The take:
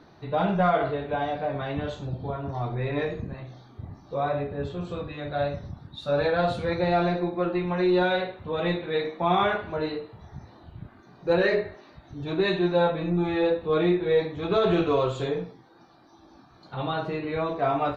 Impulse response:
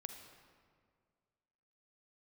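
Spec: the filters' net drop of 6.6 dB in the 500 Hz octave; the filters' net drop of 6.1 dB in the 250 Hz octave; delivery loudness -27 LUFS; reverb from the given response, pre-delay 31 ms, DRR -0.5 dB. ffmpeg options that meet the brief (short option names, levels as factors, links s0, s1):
-filter_complex "[0:a]equalizer=f=250:t=o:g=-8,equalizer=f=500:t=o:g=-6,asplit=2[s0][s1];[1:a]atrim=start_sample=2205,adelay=31[s2];[s1][s2]afir=irnorm=-1:irlink=0,volume=1.58[s3];[s0][s3]amix=inputs=2:normalize=0,volume=1.12"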